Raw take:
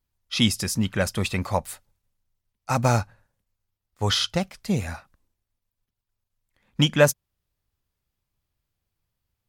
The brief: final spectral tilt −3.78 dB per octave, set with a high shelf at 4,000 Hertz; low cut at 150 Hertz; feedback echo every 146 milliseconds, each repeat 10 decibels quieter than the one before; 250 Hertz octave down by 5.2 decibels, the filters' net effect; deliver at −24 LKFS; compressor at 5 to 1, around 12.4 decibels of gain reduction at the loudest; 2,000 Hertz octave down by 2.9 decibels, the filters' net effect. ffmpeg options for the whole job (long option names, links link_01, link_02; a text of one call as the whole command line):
ffmpeg -i in.wav -af "highpass=150,equalizer=frequency=250:width_type=o:gain=-5.5,equalizer=frequency=2000:width_type=o:gain=-5.5,highshelf=frequency=4000:gain=6,acompressor=threshold=-26dB:ratio=5,aecho=1:1:146|292|438|584:0.316|0.101|0.0324|0.0104,volume=7dB" out.wav